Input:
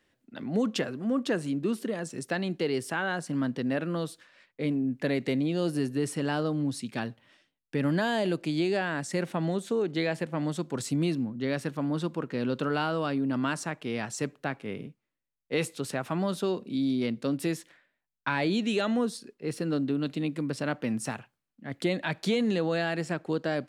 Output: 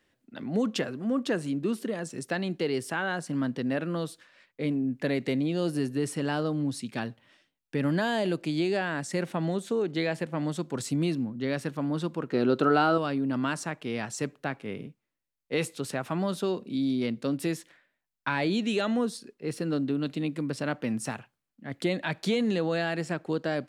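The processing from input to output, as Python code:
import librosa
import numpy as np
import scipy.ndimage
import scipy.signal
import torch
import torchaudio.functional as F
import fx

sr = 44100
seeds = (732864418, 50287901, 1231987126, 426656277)

y = fx.small_body(x, sr, hz=(370.0, 700.0, 1300.0, 4000.0), ring_ms=20, db=10, at=(12.32, 12.98))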